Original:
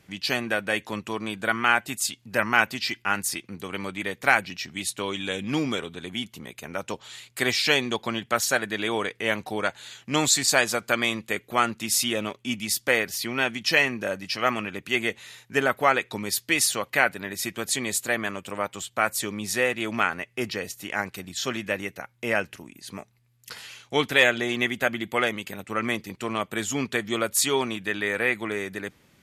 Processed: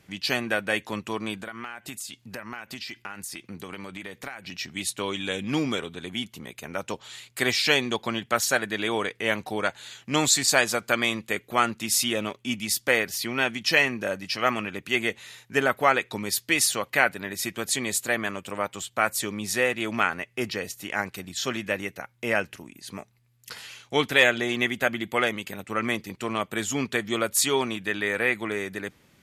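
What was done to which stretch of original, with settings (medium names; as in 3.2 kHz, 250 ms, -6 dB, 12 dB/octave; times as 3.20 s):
1.36–4.57 s: compression 16:1, threshold -32 dBFS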